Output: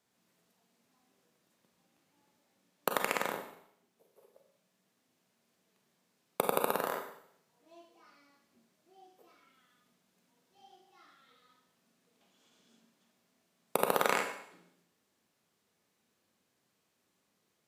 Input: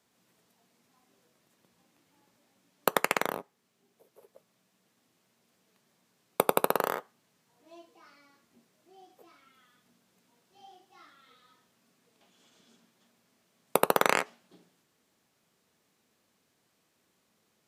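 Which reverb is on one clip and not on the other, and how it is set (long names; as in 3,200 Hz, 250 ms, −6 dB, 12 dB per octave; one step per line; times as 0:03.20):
four-comb reverb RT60 0.7 s, combs from 31 ms, DRR 4 dB
level −6 dB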